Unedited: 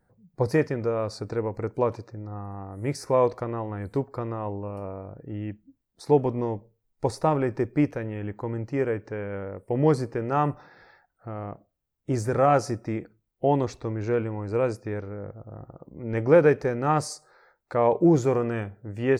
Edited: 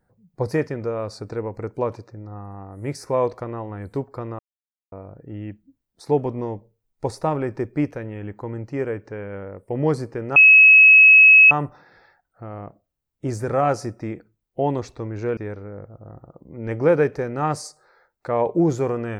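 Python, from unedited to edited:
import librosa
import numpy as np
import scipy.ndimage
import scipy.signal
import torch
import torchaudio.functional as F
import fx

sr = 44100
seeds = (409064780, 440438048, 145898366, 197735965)

y = fx.edit(x, sr, fx.silence(start_s=4.39, length_s=0.53),
    fx.insert_tone(at_s=10.36, length_s=1.15, hz=2570.0, db=-6.5),
    fx.cut(start_s=14.22, length_s=0.61), tone=tone)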